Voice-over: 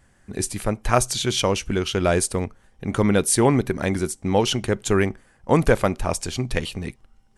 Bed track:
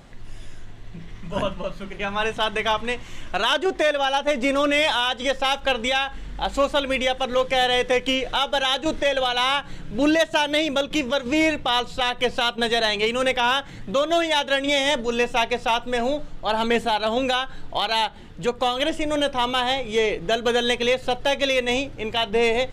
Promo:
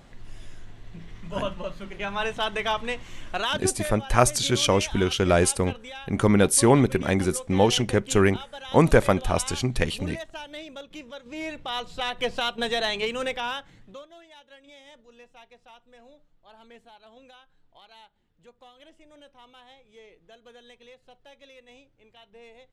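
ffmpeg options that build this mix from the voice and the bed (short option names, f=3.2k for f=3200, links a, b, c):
-filter_complex "[0:a]adelay=3250,volume=0dB[a];[1:a]volume=9dB,afade=t=out:st=3.32:d=0.66:silence=0.199526,afade=t=in:st=11.29:d=0.94:silence=0.223872,afade=t=out:st=12.94:d=1.15:silence=0.0595662[b];[a][b]amix=inputs=2:normalize=0"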